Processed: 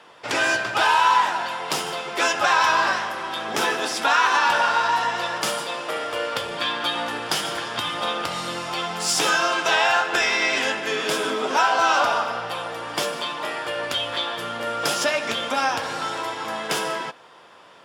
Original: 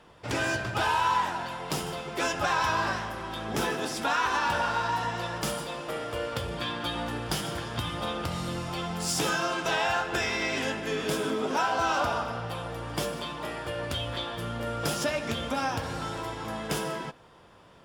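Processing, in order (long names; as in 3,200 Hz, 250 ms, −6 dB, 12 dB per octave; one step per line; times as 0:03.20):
meter weighting curve A
level +8 dB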